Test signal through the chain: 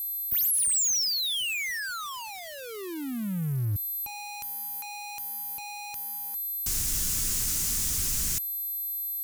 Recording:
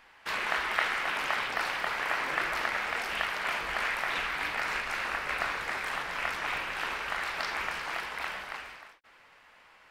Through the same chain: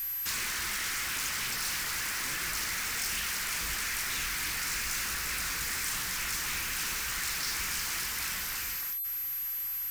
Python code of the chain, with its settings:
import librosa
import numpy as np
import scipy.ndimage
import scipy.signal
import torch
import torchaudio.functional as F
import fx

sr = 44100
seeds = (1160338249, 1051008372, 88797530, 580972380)

p1 = x + 10.0 ** (-59.0 / 20.0) * np.sin(2.0 * np.pi * 12000.0 * np.arange(len(x)) / sr)
p2 = fx.high_shelf_res(p1, sr, hz=4700.0, db=11.0, q=1.5)
p3 = fx.over_compress(p2, sr, threshold_db=-33.0, ratio=-1.0)
p4 = p2 + (p3 * librosa.db_to_amplitude(2.0))
p5 = fx.power_curve(p4, sr, exponent=0.35)
y = fx.tone_stack(p5, sr, knobs='6-0-2')